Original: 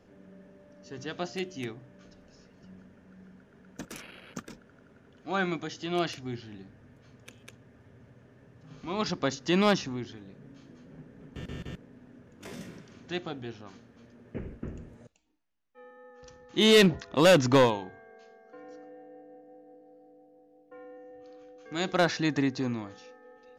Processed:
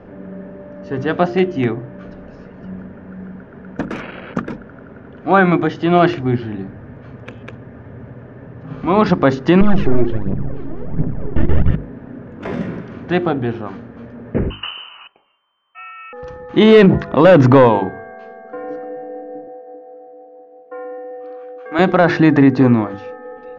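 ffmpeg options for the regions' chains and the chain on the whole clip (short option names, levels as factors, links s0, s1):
-filter_complex "[0:a]asettb=1/sr,asplit=3[s0][s1][s2];[s0]atrim=end=9.614[s3];[s1]atrim=start=9.61:end=11.71,asetpts=PTS-STARTPTS,afade=t=in:d=0.004:c=qsin,afade=t=out:st=2.096:d=0.004:c=qsin,bass=f=250:g=12,treble=f=4000:g=-8,aeval=exprs='max(val(0),0)':c=same,aphaser=in_gain=1:out_gain=1:delay=3.5:decay=0.63:speed=1.4:type=triangular[s4];[s2]atrim=start=11.706[s5];[s3][s4]acrossfade=d=0.004:c1=hsin:c2=qsin[s6];[s6][s5]acrossfade=d=0.004:c1=qsin:c2=hsin,asettb=1/sr,asplit=3[s7][s8][s9];[s7]atrim=end=14.504[s10];[s8]atrim=start=14.5:end=16.13,asetpts=PTS-STARTPTS,afade=t=in:d=0.004:c=qsin,afade=t=out:st=1.626:d=0.004:c=qsin,equalizer=f=2000:w=4.6:g=14,lowpass=f=2600:t=q:w=0.5098,lowpass=f=2600:t=q:w=0.6013,lowpass=f=2600:t=q:w=0.9,lowpass=f=2600:t=q:w=2.563,afreqshift=-3100[s11];[s9]atrim=start=16.126[s12];[s10][s11]acrossfade=d=0.004:c1=hsin:c2=qsin[s13];[s13][s12]acrossfade=d=0.004:c1=qsin:c2=hsin,asettb=1/sr,asplit=3[s14][s15][s16];[s14]atrim=end=19.474[s17];[s15]atrim=start=19.47:end=21.79,asetpts=PTS-STARTPTS,afade=t=in:d=0.004:c=qsin,afade=t=out:st=2.316:d=0.004:c=qsin,highpass=440,highshelf=f=4700:g=-9.5[s18];[s16]atrim=start=21.786[s19];[s17][s18]acrossfade=d=0.004:c1=hsin:c2=qsin[s20];[s20][s19]acrossfade=d=0.004:c1=qsin:c2=hsin,lowpass=1600,bandreject=f=50:t=h:w=6,bandreject=f=100:t=h:w=6,bandreject=f=150:t=h:w=6,bandreject=f=200:t=h:w=6,bandreject=f=250:t=h:w=6,bandreject=f=300:t=h:w=6,bandreject=f=350:t=h:w=6,bandreject=f=400:t=h:w=6,bandreject=f=450:t=h:w=6,alimiter=level_in=11.9:limit=0.891:release=50:level=0:latency=1,volume=0.891"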